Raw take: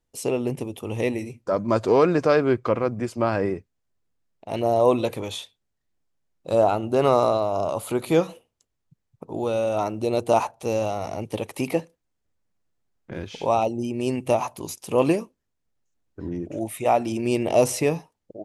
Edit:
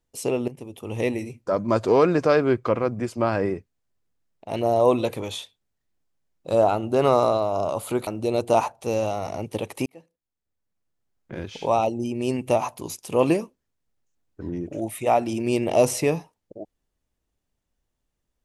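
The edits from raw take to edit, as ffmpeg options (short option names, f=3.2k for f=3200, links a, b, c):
-filter_complex "[0:a]asplit=4[a][b][c][d];[a]atrim=end=0.48,asetpts=PTS-STARTPTS,afade=t=out:st=0.476:d=0.004:c=hsin:silence=0.177828[e];[b]atrim=start=0.48:end=8.072,asetpts=PTS-STARTPTS,afade=t=in:d=0.55:silence=0.177828[f];[c]atrim=start=9.858:end=11.65,asetpts=PTS-STARTPTS,afade=t=out:st=1.788:d=0.004:c=hsin[g];[d]atrim=start=11.65,asetpts=PTS-STARTPTS,afade=t=in:d=1.53[h];[e][f]concat=n=2:v=0:a=1[i];[g][h]concat=n=2:v=0:a=1[j];[i][j]acrossfade=d=0.004:c1=hsin:c2=hsin"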